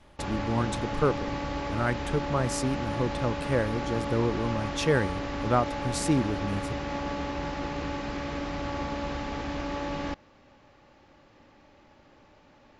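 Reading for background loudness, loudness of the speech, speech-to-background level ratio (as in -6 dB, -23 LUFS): -33.0 LUFS, -30.0 LUFS, 3.0 dB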